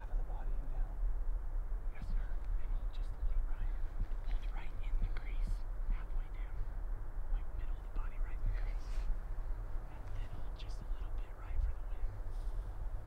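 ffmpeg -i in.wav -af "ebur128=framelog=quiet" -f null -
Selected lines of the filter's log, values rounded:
Integrated loudness:
  I:         -44.9 LUFS
  Threshold: -54.9 LUFS
Loudness range:
  LRA:         2.2 LU
  Threshold: -64.9 LUFS
  LRA low:   -46.2 LUFS
  LRA high:  -43.9 LUFS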